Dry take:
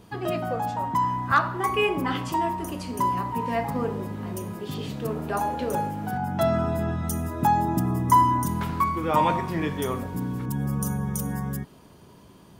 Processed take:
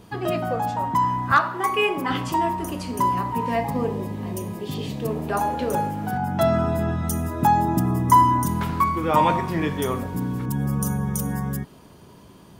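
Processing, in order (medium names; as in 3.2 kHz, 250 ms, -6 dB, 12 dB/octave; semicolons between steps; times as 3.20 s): 1.37–2.10 s: high-pass 320 Hz 6 dB/octave; 3.56–5.29 s: peaking EQ 1.4 kHz -13 dB 0.27 oct; trim +3 dB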